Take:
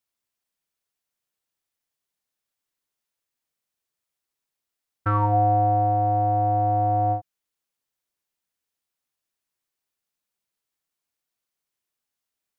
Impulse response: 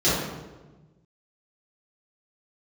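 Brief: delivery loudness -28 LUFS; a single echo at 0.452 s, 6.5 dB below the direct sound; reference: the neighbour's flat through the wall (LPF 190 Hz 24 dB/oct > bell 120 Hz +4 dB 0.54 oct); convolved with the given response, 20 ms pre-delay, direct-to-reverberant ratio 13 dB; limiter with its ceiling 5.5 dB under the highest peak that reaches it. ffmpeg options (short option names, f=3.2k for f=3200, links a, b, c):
-filter_complex "[0:a]alimiter=limit=-17dB:level=0:latency=1,aecho=1:1:452:0.473,asplit=2[a][b];[1:a]atrim=start_sample=2205,adelay=20[c];[b][c]afir=irnorm=-1:irlink=0,volume=-30.5dB[d];[a][d]amix=inputs=2:normalize=0,lowpass=f=190:w=0.5412,lowpass=f=190:w=1.3066,equalizer=f=120:t=o:w=0.54:g=4,volume=-2.5dB"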